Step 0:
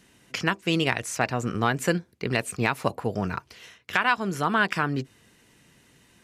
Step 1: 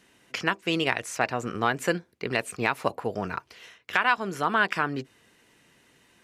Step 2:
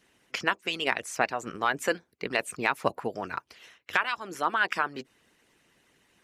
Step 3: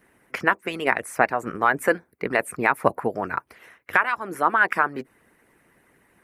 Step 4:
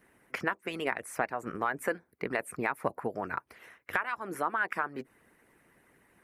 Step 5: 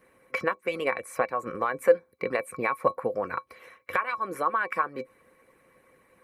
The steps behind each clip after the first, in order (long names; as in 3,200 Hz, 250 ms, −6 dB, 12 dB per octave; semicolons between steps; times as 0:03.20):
bass and treble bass −8 dB, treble −4 dB
harmonic and percussive parts rebalanced harmonic −15 dB
flat-topped bell 4,500 Hz −14 dB; level +7 dB
downward compressor 2 to 1, threshold −28 dBFS, peak gain reduction 9 dB; level −4 dB
hollow resonant body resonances 520/1,100/2,300/4,000 Hz, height 18 dB, ringing for 100 ms